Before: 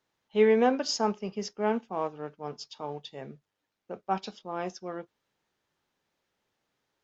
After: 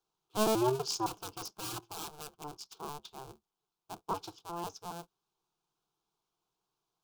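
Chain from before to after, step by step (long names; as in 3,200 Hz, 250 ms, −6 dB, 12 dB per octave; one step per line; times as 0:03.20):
sub-harmonics by changed cycles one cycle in 2, inverted
0:01.06–0:02.44: wrap-around overflow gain 29 dB
phaser with its sweep stopped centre 380 Hz, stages 8
level −3 dB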